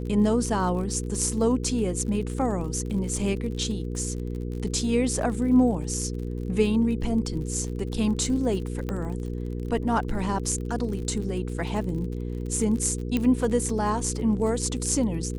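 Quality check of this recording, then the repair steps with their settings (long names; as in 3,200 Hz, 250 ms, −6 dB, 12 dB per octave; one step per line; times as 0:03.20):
surface crackle 36 per second −34 dBFS
mains hum 60 Hz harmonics 8 −31 dBFS
0:08.89: click −17 dBFS
0:13.17: click −13 dBFS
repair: click removal
hum removal 60 Hz, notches 8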